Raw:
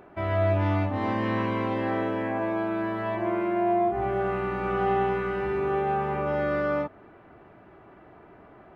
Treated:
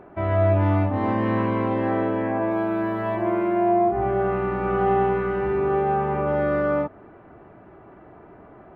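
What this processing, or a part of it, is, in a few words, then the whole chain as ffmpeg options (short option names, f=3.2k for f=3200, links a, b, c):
through cloth: -filter_complex "[0:a]asettb=1/sr,asplit=3[a][b][c];[a]atrim=end=2.514[d];[b]atrim=start=2.51:end=3.69,asetpts=PTS-STARTPTS,afade=t=in:d=0.004:c=qsin,afade=t=out:st=1.176:d=0.004:c=qsin,aemphasis=mode=production:type=50fm[e];[c]atrim=start=3.686[f];[d][e]acrossfade=d=0.004:c1=hsin:c2=qsin[g];[g][f]acrossfade=d=0.004:c1=qsin:c2=hsin,highshelf=f=2.9k:g=-15.5,volume=5dB"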